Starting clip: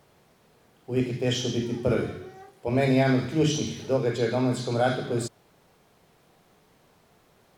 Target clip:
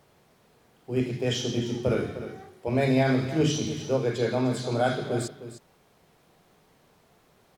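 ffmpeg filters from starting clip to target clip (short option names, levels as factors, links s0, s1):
-af "aecho=1:1:305:0.237,volume=0.891"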